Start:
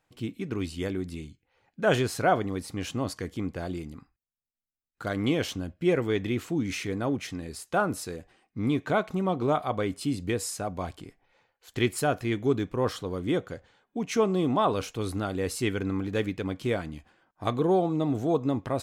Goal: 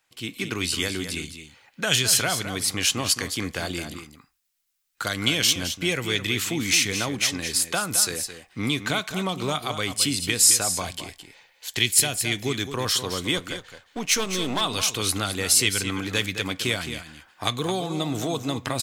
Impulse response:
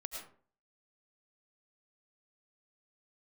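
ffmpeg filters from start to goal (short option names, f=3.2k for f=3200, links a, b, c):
-filter_complex "[0:a]asettb=1/sr,asplit=3[a][b][c];[a]atrim=end=13.374[d];[b]atrim=start=13.37:end=14.61,asetpts=PTS-STARTPTS,afade=t=in:d=0.004:c=qsin,afade=t=out:st=1.236:d=0.004:c=qsin,aeval=exprs='if(lt(val(0),0),0.447*val(0),val(0))':c=same[e];[c]atrim=start=14.606[f];[d][e]acrossfade=d=0.004:c1=hsin:c2=qsin[g];[g][f]acrossfade=d=0.004:c1=qsin:c2=hsin,tiltshelf=f=970:g=-9.5,acrossover=split=200|3000[h][i][j];[i]acompressor=threshold=-37dB:ratio=6[k];[h][k][j]amix=inputs=3:normalize=0,aecho=1:1:215:0.316,dynaudnorm=f=100:g=5:m=10dB,asettb=1/sr,asplit=3[l][m][n];[l]atrim=end=10.824[o];[m]atrim=start=10.82:end=12.48,asetpts=PTS-STARTPTS,afade=t=in:d=0.004:c=qsin,afade=t=out:st=1.656:d=0.004:c=qsin,equalizer=f=1.3k:t=o:w=0.43:g=-7[p];[n]atrim=start=12.476[q];[o][p]acrossfade=d=0.004:c1=hsin:c2=qsin[r];[r][q]acrossfade=d=0.004:c1=qsin:c2=hsin"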